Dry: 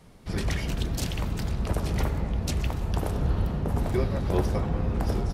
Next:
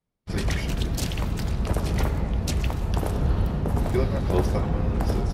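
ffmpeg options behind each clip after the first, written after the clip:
-af "agate=range=-33dB:threshold=-29dB:ratio=3:detection=peak,volume=2.5dB"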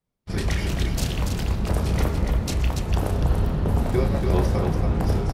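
-af "aecho=1:1:32.07|285.7:0.398|0.562"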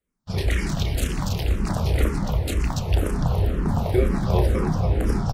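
-filter_complex "[0:a]asplit=2[a][b];[b]afreqshift=-2[c];[a][c]amix=inputs=2:normalize=1,volume=3.5dB"

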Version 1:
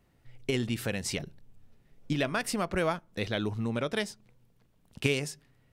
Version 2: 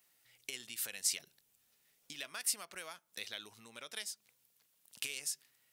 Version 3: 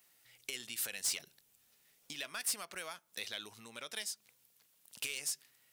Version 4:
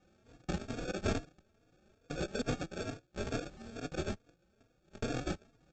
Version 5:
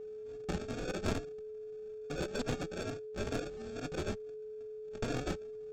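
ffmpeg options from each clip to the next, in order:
-af "acompressor=threshold=-37dB:ratio=4,aderivative,volume=9dB"
-af "asoftclip=type=tanh:threshold=-32dB,volume=3.5dB"
-filter_complex "[0:a]aresample=16000,acrusher=samples=16:mix=1:aa=0.000001,aresample=44100,asplit=2[a][b];[b]adelay=3.6,afreqshift=2.3[c];[a][c]amix=inputs=2:normalize=1,volume=9dB"
-af "aeval=exprs='clip(val(0),-1,0.0178)':c=same,aeval=exprs='val(0)+0.00708*sin(2*PI*430*n/s)':c=same,volume=1dB"

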